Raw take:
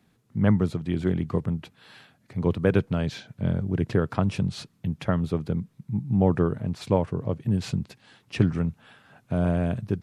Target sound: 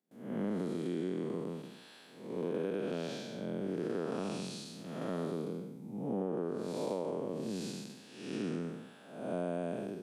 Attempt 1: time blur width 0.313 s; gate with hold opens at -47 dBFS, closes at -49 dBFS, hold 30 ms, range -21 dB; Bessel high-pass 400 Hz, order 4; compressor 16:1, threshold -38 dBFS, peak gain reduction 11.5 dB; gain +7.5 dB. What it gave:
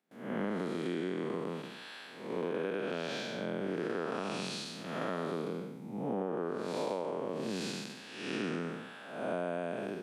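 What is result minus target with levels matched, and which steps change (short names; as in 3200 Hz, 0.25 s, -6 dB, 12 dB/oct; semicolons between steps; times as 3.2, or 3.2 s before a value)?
2000 Hz band +8.0 dB
add after Bessel high-pass: bell 1700 Hz -11.5 dB 2.9 oct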